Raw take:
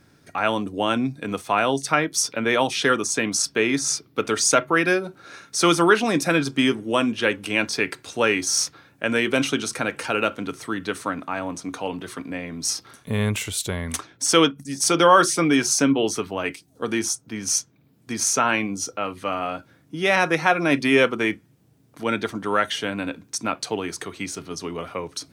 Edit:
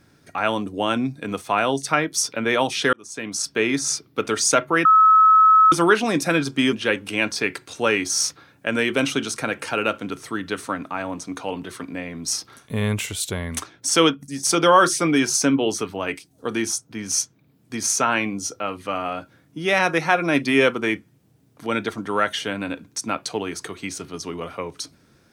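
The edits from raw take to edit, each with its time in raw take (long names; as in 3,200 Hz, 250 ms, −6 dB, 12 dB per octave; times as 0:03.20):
0:02.93–0:03.62: fade in
0:04.85–0:05.72: beep over 1,290 Hz −9.5 dBFS
0:06.73–0:07.10: remove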